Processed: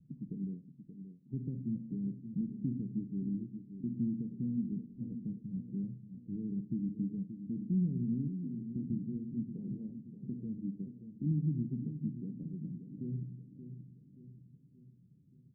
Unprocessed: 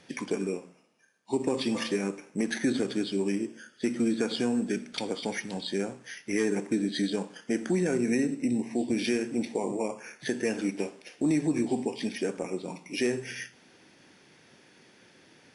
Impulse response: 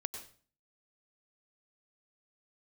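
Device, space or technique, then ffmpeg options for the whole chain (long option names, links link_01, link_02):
the neighbour's flat through the wall: -filter_complex "[0:a]asettb=1/sr,asplit=3[link_01][link_02][link_03];[link_01]atrim=end=8.274[link_04];[link_02]atrim=start=8.27:end=8.76,asetpts=PTS-STARTPTS,afade=type=in:duration=0.004:curve=qsin,afade=type=out:start_time=0.486:duration=0.004:curve=qsin,highpass=frequency=270:width=0.5412,highpass=frequency=270:width=1.3066[link_05];[link_03]atrim=start=8.756[link_06];[link_04][link_05]acrossfade=duration=0.004:curve1=hsin:curve2=qsin[link_07];[link_07][link_06]acrossfade=duration=0.004:curve1=qsin:curve2=hsin,lowpass=frequency=190:width=0.5412,lowpass=frequency=190:width=1.3066,equalizer=frequency=140:width_type=o:width=0.55:gain=7,aecho=1:1:578|1156|1734|2312|2890:0.316|0.152|0.0729|0.035|0.0168"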